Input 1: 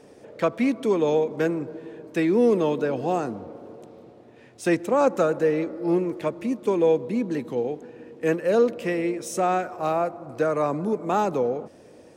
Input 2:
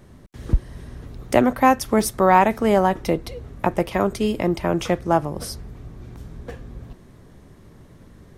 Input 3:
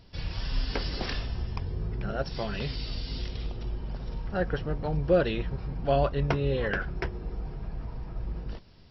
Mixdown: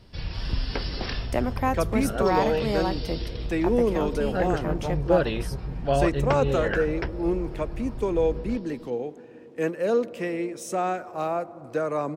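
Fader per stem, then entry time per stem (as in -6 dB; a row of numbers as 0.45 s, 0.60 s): -3.5 dB, -10.0 dB, +1.5 dB; 1.35 s, 0.00 s, 0.00 s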